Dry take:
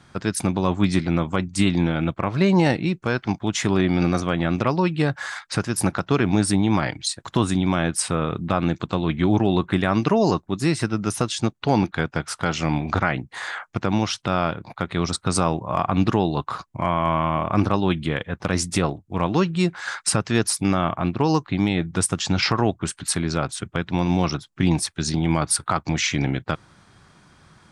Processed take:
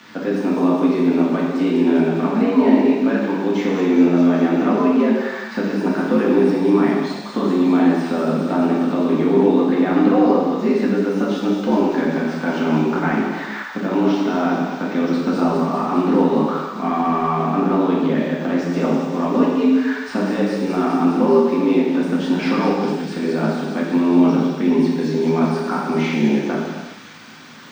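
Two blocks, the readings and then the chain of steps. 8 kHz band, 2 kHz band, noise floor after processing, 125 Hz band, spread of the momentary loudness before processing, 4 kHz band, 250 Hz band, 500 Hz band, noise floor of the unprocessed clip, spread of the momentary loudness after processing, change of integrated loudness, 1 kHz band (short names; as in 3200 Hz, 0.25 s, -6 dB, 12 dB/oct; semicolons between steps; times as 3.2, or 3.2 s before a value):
under -15 dB, +0.5 dB, -31 dBFS, -4.0 dB, 6 LU, -5.5 dB, +7.0 dB, +7.0 dB, -56 dBFS, 7 LU, +4.5 dB, +2.5 dB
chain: switching spikes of -22 dBFS; frequency shift +82 Hz; de-esser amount 65%; in parallel at +2 dB: limiter -18.5 dBFS, peak gain reduction 10 dB; on the sum: air absorption 200 m; de-hum 46.12 Hz, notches 29; on a send: thin delay 0.203 s, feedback 78%, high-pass 5100 Hz, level -3.5 dB; on the sum: non-linear reverb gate 0.44 s falling, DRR -5 dB; gain -4 dB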